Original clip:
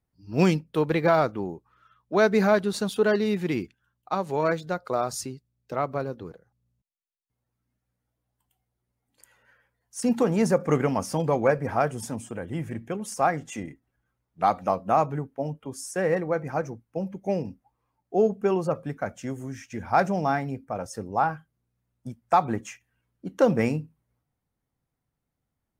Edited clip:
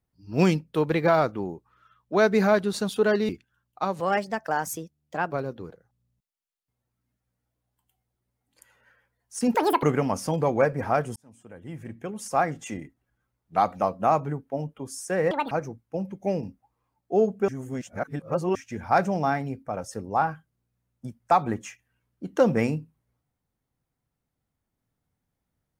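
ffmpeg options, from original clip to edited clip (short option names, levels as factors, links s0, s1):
-filter_complex "[0:a]asplit=11[s0][s1][s2][s3][s4][s5][s6][s7][s8][s9][s10];[s0]atrim=end=3.292[s11];[s1]atrim=start=3.588:end=4.304[s12];[s2]atrim=start=4.3:end=5.93,asetpts=PTS-STARTPTS,asetrate=54684,aresample=44100,atrim=end_sample=57970,asetpts=PTS-STARTPTS[s13];[s3]atrim=start=5.926:end=10.164[s14];[s4]atrim=start=10.16:end=10.69,asetpts=PTS-STARTPTS,asetrate=82026,aresample=44100,atrim=end_sample=12566,asetpts=PTS-STARTPTS[s15];[s5]atrim=start=10.686:end=12.02,asetpts=PTS-STARTPTS,afade=t=out:st=1.33:d=0.004:c=hsin[s16];[s6]atrim=start=12.02:end=16.174,asetpts=PTS-STARTPTS,afade=t=in:d=1.29[s17];[s7]atrim=start=16.17:end=16.53,asetpts=PTS-STARTPTS,asetrate=78498,aresample=44100,atrim=end_sample=8919,asetpts=PTS-STARTPTS[s18];[s8]atrim=start=16.526:end=18.502[s19];[s9]atrim=start=18.498:end=19.572,asetpts=PTS-STARTPTS,areverse[s20];[s10]atrim=start=19.568[s21];[s11][s12]acrossfade=d=0.004:c1=hsin:c2=hsin[s22];[s22][s13]acrossfade=d=0.004:c1=hsin:c2=hsin[s23];[s23][s14]acrossfade=d=0.004:c1=hsin:c2=hsin[s24];[s24][s15]acrossfade=d=0.004:c1=hsin:c2=hsin[s25];[s16][s17]concat=n=2:v=0:a=1[s26];[s25][s26]acrossfade=d=0.004:c1=hsin:c2=hsin[s27];[s27][s18]acrossfade=d=0.004:c1=hsin:c2=hsin[s28];[s28][s19]acrossfade=d=0.004:c1=hsin:c2=hsin[s29];[s29][s20]acrossfade=d=0.004:c1=hsin:c2=hsin[s30];[s30][s21]acrossfade=d=0.004:c1=hsin:c2=hsin"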